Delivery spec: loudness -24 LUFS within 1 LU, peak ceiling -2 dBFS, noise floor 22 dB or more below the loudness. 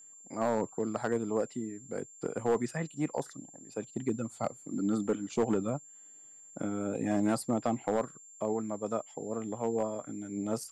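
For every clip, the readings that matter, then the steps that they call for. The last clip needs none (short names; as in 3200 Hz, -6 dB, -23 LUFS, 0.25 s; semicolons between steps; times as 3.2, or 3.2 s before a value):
clipped 0.4%; flat tops at -21.0 dBFS; steady tone 7300 Hz; tone level -51 dBFS; loudness -34.0 LUFS; peak -21.0 dBFS; loudness target -24.0 LUFS
-> clip repair -21 dBFS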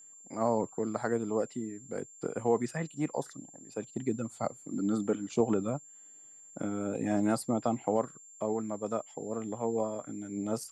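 clipped 0.0%; steady tone 7300 Hz; tone level -51 dBFS
-> notch 7300 Hz, Q 30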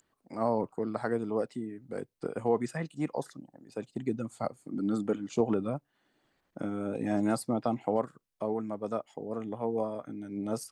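steady tone none; loudness -33.5 LUFS; peak -13.5 dBFS; loudness target -24.0 LUFS
-> gain +9.5 dB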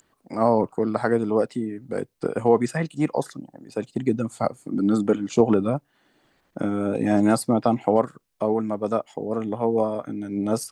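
loudness -24.0 LUFS; peak -4.0 dBFS; noise floor -68 dBFS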